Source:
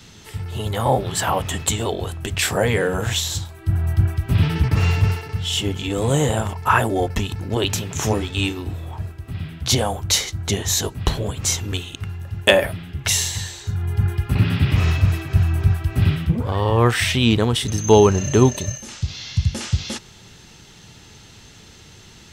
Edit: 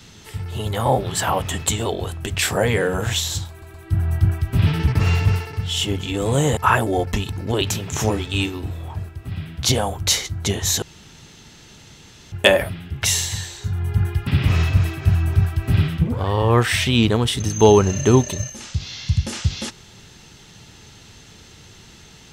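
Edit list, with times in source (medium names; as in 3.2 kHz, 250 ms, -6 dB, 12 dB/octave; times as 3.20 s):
3.50 s: stutter 0.12 s, 3 plays
6.33–6.60 s: delete
10.85–12.35 s: room tone
14.30–14.55 s: delete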